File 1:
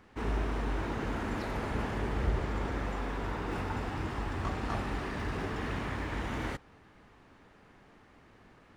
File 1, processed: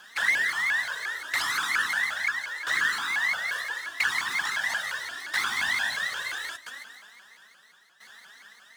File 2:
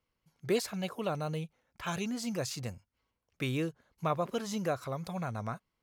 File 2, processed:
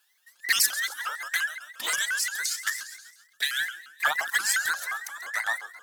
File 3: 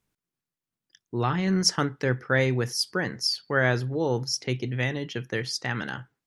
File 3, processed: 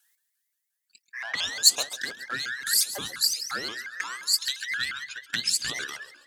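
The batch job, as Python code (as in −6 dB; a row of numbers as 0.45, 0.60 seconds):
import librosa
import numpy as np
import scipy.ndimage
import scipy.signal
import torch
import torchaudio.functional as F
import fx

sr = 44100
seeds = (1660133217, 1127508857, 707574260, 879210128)

p1 = fx.band_invert(x, sr, width_hz=2000)
p2 = 10.0 ** (-20.0 / 20.0) * np.tanh(p1 / 10.0 ** (-20.0 / 20.0))
p3 = p1 + F.gain(torch.from_numpy(p2), -4.5).numpy()
p4 = fx.highpass(p3, sr, hz=94.0, slope=6)
p5 = fx.tilt_shelf(p4, sr, db=-5.5, hz=870.0)
p6 = p5 + fx.echo_feedback(p5, sr, ms=135, feedback_pct=52, wet_db=-13, dry=0)
p7 = fx.tremolo_shape(p6, sr, shape='saw_down', hz=0.75, depth_pct=80)
p8 = fx.env_flanger(p7, sr, rest_ms=5.1, full_db=-21.0)
p9 = scipy.signal.lfilter([1.0, -0.8], [1.0], p8)
p10 = fx.vibrato_shape(p9, sr, shape='saw_up', rate_hz=5.7, depth_cents=250.0)
y = p10 * 10.0 ** (-30 / 20.0) / np.sqrt(np.mean(np.square(p10)))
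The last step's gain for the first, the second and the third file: +15.0, +16.0, +8.5 decibels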